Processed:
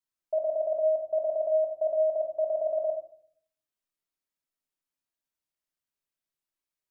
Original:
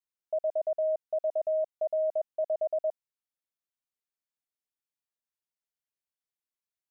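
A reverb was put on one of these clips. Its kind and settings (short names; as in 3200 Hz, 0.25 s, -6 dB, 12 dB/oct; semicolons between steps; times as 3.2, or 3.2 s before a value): shoebox room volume 750 m³, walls furnished, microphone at 2.8 m; gain -1.5 dB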